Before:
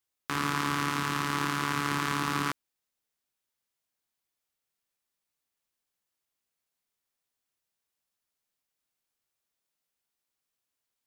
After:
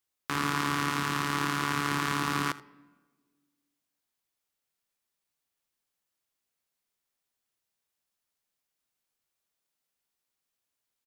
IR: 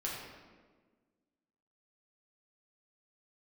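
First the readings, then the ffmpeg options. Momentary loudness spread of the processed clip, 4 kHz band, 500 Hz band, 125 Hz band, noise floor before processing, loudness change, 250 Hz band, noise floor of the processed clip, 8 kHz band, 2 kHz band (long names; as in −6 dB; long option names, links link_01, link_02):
4 LU, +0.5 dB, +0.5 dB, 0.0 dB, below −85 dBFS, +0.5 dB, +0.5 dB, −85 dBFS, +0.5 dB, +0.5 dB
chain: -filter_complex "[0:a]aecho=1:1:81:0.112,asplit=2[link_01][link_02];[1:a]atrim=start_sample=2205[link_03];[link_02][link_03]afir=irnorm=-1:irlink=0,volume=-22dB[link_04];[link_01][link_04]amix=inputs=2:normalize=0"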